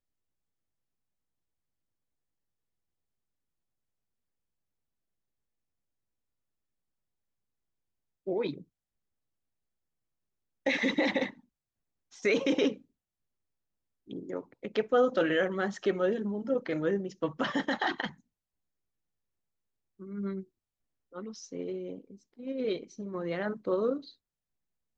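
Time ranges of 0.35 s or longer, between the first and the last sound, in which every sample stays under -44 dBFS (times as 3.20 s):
8.62–10.66 s
11.30–12.14 s
12.77–14.10 s
18.11–20.00 s
20.43–21.14 s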